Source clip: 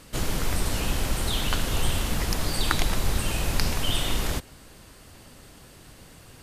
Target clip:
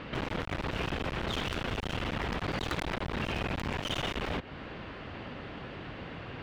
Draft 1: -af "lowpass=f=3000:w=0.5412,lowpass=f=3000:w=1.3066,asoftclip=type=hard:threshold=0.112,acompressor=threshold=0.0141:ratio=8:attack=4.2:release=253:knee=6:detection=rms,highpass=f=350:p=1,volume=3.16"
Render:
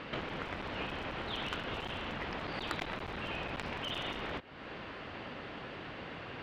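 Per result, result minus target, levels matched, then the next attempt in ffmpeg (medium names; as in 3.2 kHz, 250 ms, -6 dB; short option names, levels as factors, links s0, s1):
hard clipper: distortion -9 dB; 125 Hz band -4.5 dB
-af "lowpass=f=3000:w=0.5412,lowpass=f=3000:w=1.3066,asoftclip=type=hard:threshold=0.0422,acompressor=threshold=0.0141:ratio=8:attack=4.2:release=253:knee=6:detection=rms,highpass=f=350:p=1,volume=3.16"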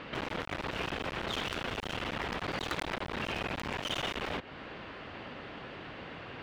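125 Hz band -5.0 dB
-af "lowpass=f=3000:w=0.5412,lowpass=f=3000:w=1.3066,asoftclip=type=hard:threshold=0.0422,acompressor=threshold=0.0141:ratio=8:attack=4.2:release=253:knee=6:detection=rms,highpass=f=120:p=1,volume=3.16"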